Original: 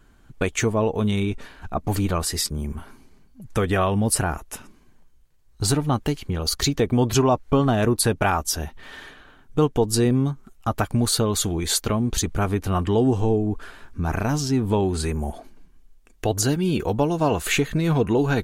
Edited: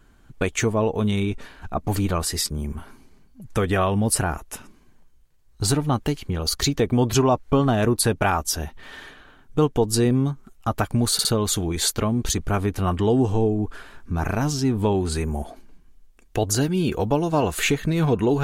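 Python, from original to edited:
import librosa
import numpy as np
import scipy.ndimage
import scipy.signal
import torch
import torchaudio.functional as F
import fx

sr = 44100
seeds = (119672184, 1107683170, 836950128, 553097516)

y = fx.edit(x, sr, fx.stutter(start_s=11.13, slice_s=0.06, count=3), tone=tone)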